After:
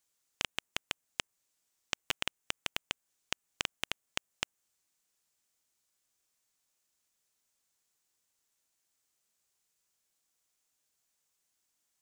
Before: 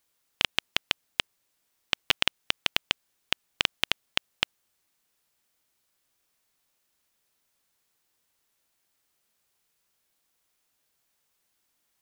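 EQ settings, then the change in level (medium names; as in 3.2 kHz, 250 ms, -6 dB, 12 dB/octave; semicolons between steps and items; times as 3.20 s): dynamic bell 4.5 kHz, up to -7 dB, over -45 dBFS, Q 0.95; peaking EQ 7.1 kHz +8.5 dB 0.87 oct; -8.0 dB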